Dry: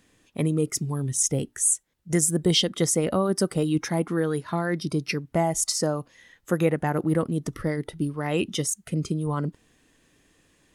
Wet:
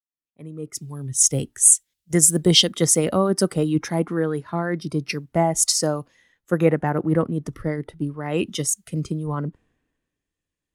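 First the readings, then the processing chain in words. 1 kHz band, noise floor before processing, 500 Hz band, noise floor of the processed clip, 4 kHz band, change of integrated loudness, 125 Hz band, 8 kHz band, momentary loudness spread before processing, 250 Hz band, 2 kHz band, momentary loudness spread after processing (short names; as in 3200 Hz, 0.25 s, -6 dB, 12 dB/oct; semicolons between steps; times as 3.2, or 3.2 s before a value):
+3.0 dB, -66 dBFS, +3.0 dB, under -85 dBFS, +6.0 dB, +5.0 dB, +2.0 dB, +7.0 dB, 7 LU, +2.0 dB, +1.5 dB, 14 LU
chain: opening faded in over 1.32 s; short-mantissa float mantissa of 6-bit; three-band expander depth 70%; gain +2.5 dB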